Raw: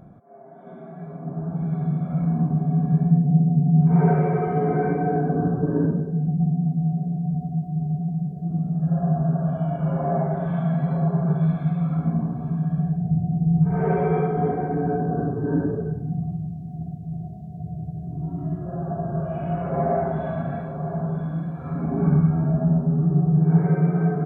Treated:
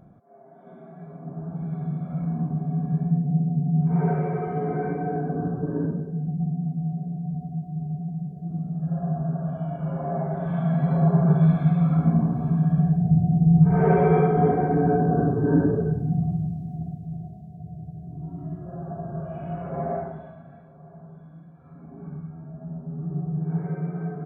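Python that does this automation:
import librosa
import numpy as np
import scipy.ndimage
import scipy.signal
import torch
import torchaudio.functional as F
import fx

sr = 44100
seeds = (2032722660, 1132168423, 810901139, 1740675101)

y = fx.gain(x, sr, db=fx.line((10.12, -5.0), (11.12, 3.0), (16.44, 3.0), (17.58, -6.0), (19.96, -6.0), (20.39, -18.5), (22.52, -18.5), (23.14, -9.5)))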